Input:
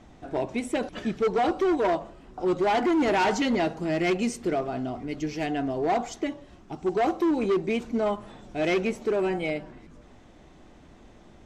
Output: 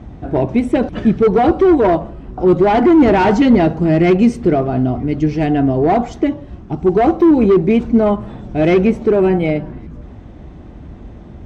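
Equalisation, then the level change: high-pass 57 Hz; RIAA curve playback; band-stop 7 kHz, Q 29; +9.0 dB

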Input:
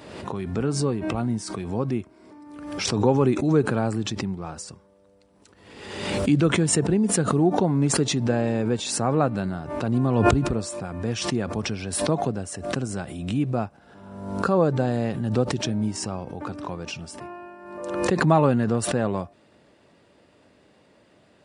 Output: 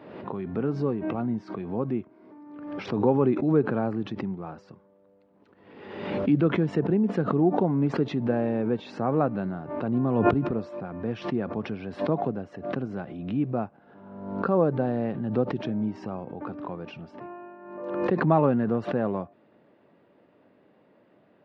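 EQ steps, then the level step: high-pass 160 Hz 12 dB/octave; distance through air 250 m; tape spacing loss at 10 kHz 22 dB; 0.0 dB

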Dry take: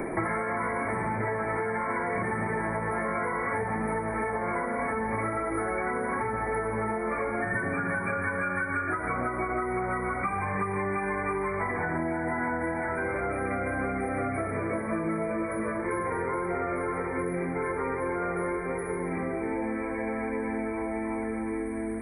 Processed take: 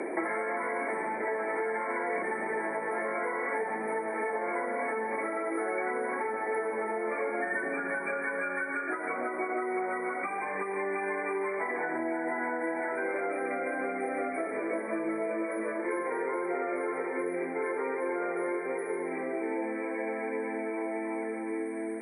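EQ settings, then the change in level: high-pass 290 Hz 24 dB/octave; low-pass 9.4 kHz 24 dB/octave; peaking EQ 1.2 kHz -7.5 dB 0.55 oct; 0.0 dB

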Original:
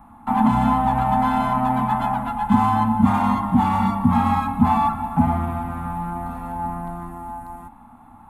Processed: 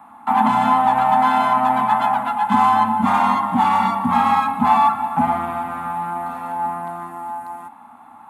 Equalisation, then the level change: frequency weighting A; +5.5 dB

